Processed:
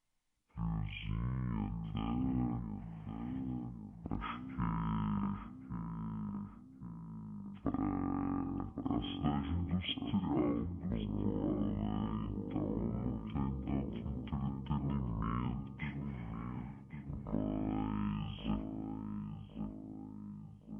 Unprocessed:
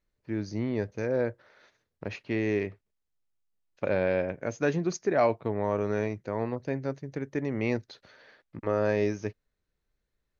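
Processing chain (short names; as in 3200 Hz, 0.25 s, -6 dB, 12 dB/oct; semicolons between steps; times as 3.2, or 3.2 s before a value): high shelf 3800 Hz +9 dB; de-hum 221.5 Hz, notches 11; compressor, threshold -28 dBFS, peak gain reduction 9 dB; resonator 200 Hz, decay 0.54 s, harmonics all, mix 40%; on a send: tape echo 0.557 s, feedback 61%, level -4 dB, low-pass 1300 Hz; on the sum: speed mistake 15 ips tape played at 7.5 ips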